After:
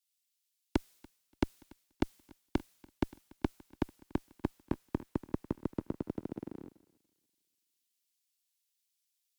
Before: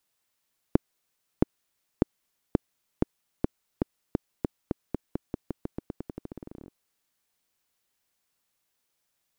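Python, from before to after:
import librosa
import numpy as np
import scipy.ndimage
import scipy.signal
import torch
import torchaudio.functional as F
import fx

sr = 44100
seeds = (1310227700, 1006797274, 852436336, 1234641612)

y = fx.tube_stage(x, sr, drive_db=33.0, bias=0.65)
y = fx.echo_feedback(y, sr, ms=288, feedback_pct=60, wet_db=-16.5)
y = fx.band_widen(y, sr, depth_pct=100)
y = y * librosa.db_to_amplitude(11.0)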